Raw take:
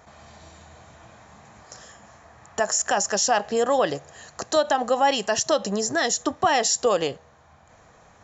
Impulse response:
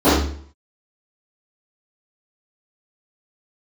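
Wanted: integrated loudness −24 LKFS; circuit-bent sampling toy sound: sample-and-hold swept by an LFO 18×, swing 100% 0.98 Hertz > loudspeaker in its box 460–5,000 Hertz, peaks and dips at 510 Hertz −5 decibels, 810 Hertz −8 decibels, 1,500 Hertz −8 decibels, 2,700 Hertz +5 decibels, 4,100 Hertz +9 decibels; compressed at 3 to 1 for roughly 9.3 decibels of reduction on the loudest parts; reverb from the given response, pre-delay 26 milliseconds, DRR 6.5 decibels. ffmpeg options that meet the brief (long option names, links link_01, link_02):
-filter_complex "[0:a]acompressor=threshold=-29dB:ratio=3,asplit=2[link_01][link_02];[1:a]atrim=start_sample=2205,adelay=26[link_03];[link_02][link_03]afir=irnorm=-1:irlink=0,volume=-33dB[link_04];[link_01][link_04]amix=inputs=2:normalize=0,acrusher=samples=18:mix=1:aa=0.000001:lfo=1:lforange=18:lforate=0.98,highpass=460,equalizer=frequency=510:width_type=q:width=4:gain=-5,equalizer=frequency=810:width_type=q:width=4:gain=-8,equalizer=frequency=1500:width_type=q:width=4:gain=-8,equalizer=frequency=2700:width_type=q:width=4:gain=5,equalizer=frequency=4100:width_type=q:width=4:gain=9,lowpass=frequency=5000:width=0.5412,lowpass=frequency=5000:width=1.3066,volume=7.5dB"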